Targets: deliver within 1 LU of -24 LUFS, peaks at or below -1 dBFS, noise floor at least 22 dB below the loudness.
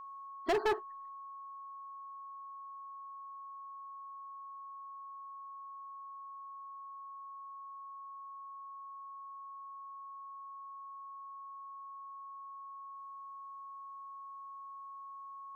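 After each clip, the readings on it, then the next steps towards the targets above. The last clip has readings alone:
clipped samples 0.3%; clipping level -26.5 dBFS; steady tone 1.1 kHz; tone level -45 dBFS; loudness -44.5 LUFS; peak level -26.5 dBFS; loudness target -24.0 LUFS
-> clip repair -26.5 dBFS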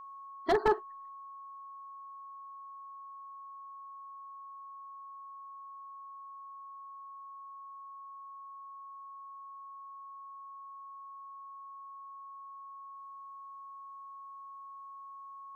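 clipped samples 0.0%; steady tone 1.1 kHz; tone level -45 dBFS
-> band-stop 1.1 kHz, Q 30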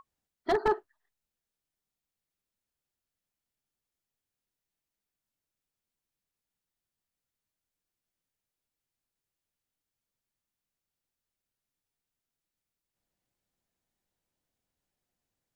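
steady tone not found; loudness -30.0 LUFS; peak level -17.0 dBFS; loudness target -24.0 LUFS
-> trim +6 dB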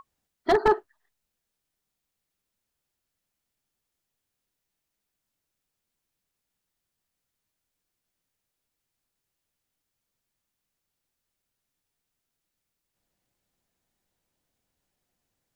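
loudness -24.5 LUFS; peak level -11.0 dBFS; noise floor -84 dBFS

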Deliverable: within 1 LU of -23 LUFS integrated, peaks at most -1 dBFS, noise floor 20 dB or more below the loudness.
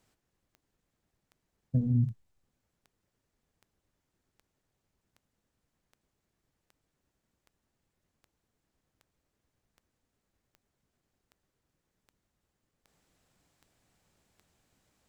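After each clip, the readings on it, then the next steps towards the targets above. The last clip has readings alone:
clicks found 19; loudness -30.0 LUFS; peak level -17.5 dBFS; loudness target -23.0 LUFS
-> de-click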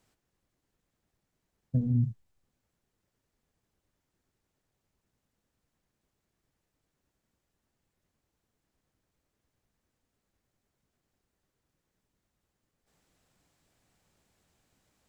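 clicks found 0; loudness -30.0 LUFS; peak level -17.5 dBFS; loudness target -23.0 LUFS
-> trim +7 dB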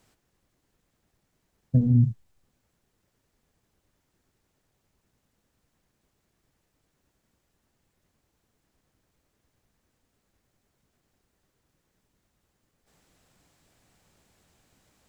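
loudness -23.0 LUFS; peak level -10.5 dBFS; noise floor -76 dBFS

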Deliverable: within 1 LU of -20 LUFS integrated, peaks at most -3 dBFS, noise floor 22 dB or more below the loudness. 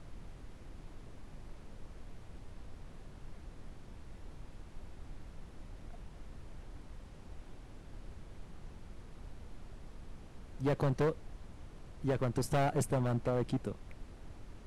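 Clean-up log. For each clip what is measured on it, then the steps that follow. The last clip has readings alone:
clipped samples 1.1%; clipping level -26.5 dBFS; noise floor -53 dBFS; noise floor target -57 dBFS; loudness -34.5 LUFS; peak level -26.5 dBFS; loudness target -20.0 LUFS
-> clip repair -26.5 dBFS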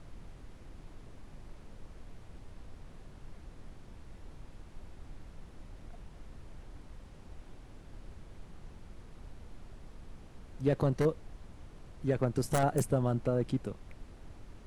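clipped samples 0.0%; noise floor -53 dBFS; noise floor target -54 dBFS
-> noise print and reduce 6 dB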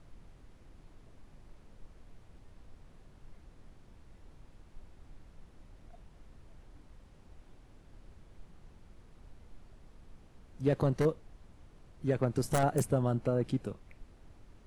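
noise floor -59 dBFS; loudness -32.0 LUFS; peak level -17.5 dBFS; loudness target -20.0 LUFS
-> trim +12 dB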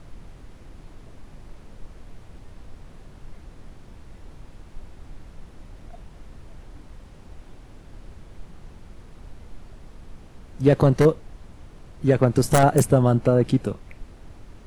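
loudness -20.0 LUFS; peak level -5.5 dBFS; noise floor -47 dBFS

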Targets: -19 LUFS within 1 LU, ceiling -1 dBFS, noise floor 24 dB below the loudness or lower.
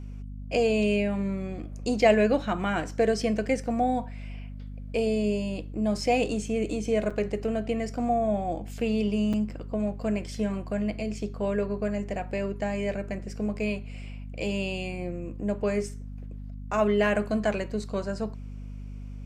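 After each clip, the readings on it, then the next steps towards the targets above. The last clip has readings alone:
dropouts 2; longest dropout 5.6 ms; hum 50 Hz; highest harmonic 250 Hz; hum level -36 dBFS; loudness -28.0 LUFS; peak level -7.5 dBFS; loudness target -19.0 LUFS
-> interpolate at 7.10/9.33 s, 5.6 ms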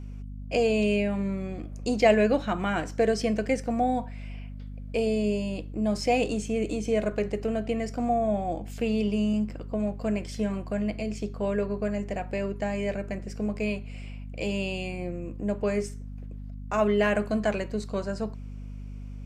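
dropouts 0; hum 50 Hz; highest harmonic 250 Hz; hum level -36 dBFS
-> de-hum 50 Hz, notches 5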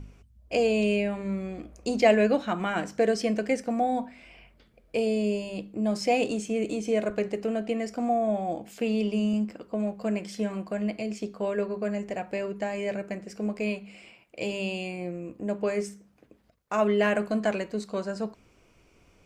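hum not found; loudness -28.5 LUFS; peak level -7.5 dBFS; loudness target -19.0 LUFS
-> trim +9.5 dB; peak limiter -1 dBFS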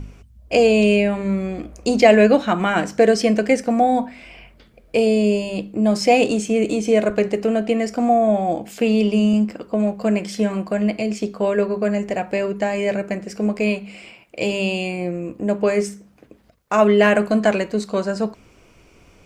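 loudness -19.0 LUFS; peak level -1.0 dBFS; noise floor -52 dBFS

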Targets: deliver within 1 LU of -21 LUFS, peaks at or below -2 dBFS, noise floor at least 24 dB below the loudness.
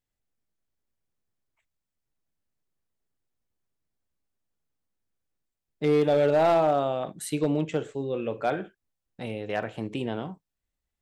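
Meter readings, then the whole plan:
clipped samples 0.4%; clipping level -16.0 dBFS; dropouts 1; longest dropout 1.3 ms; loudness -26.5 LUFS; peak level -16.0 dBFS; loudness target -21.0 LUFS
-> clip repair -16 dBFS; interpolate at 9.63 s, 1.3 ms; trim +5.5 dB

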